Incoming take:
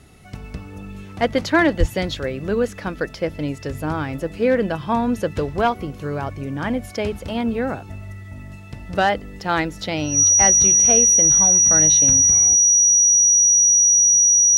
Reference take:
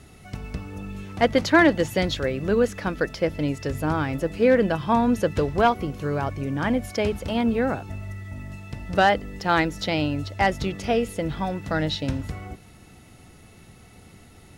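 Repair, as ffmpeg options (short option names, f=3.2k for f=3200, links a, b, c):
-filter_complex "[0:a]bandreject=f=5.8k:w=30,asplit=3[a][b][c];[a]afade=t=out:st=1.79:d=0.02[d];[b]highpass=f=140:w=0.5412,highpass=f=140:w=1.3066,afade=t=in:st=1.79:d=0.02,afade=t=out:st=1.91:d=0.02[e];[c]afade=t=in:st=1.91:d=0.02[f];[d][e][f]amix=inputs=3:normalize=0"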